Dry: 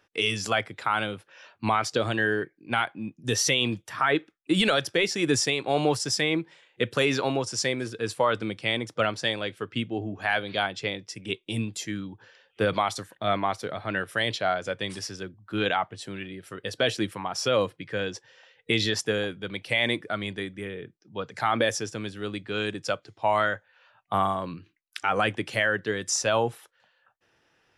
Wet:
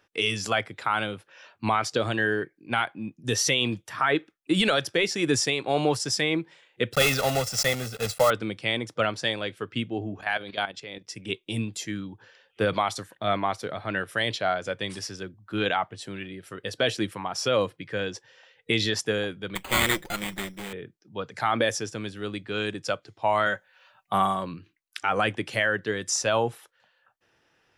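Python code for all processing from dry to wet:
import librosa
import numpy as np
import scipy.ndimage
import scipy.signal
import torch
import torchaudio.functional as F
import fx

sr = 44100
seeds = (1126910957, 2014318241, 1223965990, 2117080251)

y = fx.chain(x, sr, fx.block_float(bits=3),
    fx.comb(ms=1.5, depth=0.76), at=(6.93, 8.31))
y = fx.chain(y, sr, fx.highpass(hz=140.0, slope=6),
    fx.level_steps(step_db=13), at=(10.21, 11.07))
y = fx.chain(y, sr, fx.lower_of_two(delay_ms=5.7),
    fx.lowpass_res(hz=4700.0, q=3.7),
    fx.resample_bad(factor=8, down='none', up='hold'), at=(19.55, 20.73))
y = fx.chain(y, sr, fx.high_shelf(hz=4300.0, db=7.5),
    fx.comb(ms=5.3, depth=0.4), at=(23.46, 24.44))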